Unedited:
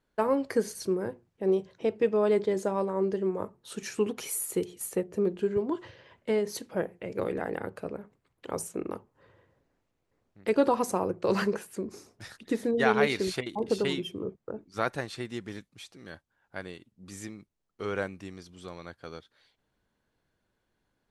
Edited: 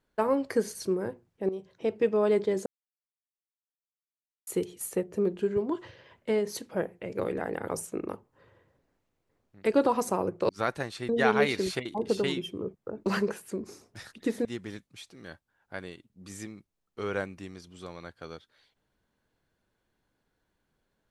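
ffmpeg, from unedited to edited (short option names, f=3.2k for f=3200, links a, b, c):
-filter_complex "[0:a]asplit=9[a][b][c][d][e][f][g][h][i];[a]atrim=end=1.49,asetpts=PTS-STARTPTS,afade=t=out:st=1.486:d=0.004:c=hsin:silence=0.199526[j];[b]atrim=start=1.49:end=2.66,asetpts=PTS-STARTPTS,afade=t=in:d=0.44:silence=0.199526,afade=t=out:st=1.166:d=0.004:c=hsin[k];[c]atrim=start=2.66:end=4.47,asetpts=PTS-STARTPTS,volume=0[l];[d]atrim=start=4.47:end=7.682,asetpts=PTS-STARTPTS,afade=t=in:d=0.004:c=hsin[m];[e]atrim=start=8.498:end=11.312[n];[f]atrim=start=14.668:end=15.272[o];[g]atrim=start=12.698:end=14.672[p];[h]atrim=start=11.308:end=12.702[q];[i]atrim=start=15.268[r];[j][k][l][m]concat=n=4:v=0:a=1[s];[s][n]acrossfade=d=0.004:c1=hsin:c2=hsin[t];[t][o]acrossfade=d=0.004:c1=hsin:c2=hsin[u];[u][p]acrossfade=d=0.004:c1=hsin:c2=hsin[v];[v][q]acrossfade=d=0.004:c1=hsin:c2=hsin[w];[w][r]acrossfade=d=0.004:c1=hsin:c2=hsin"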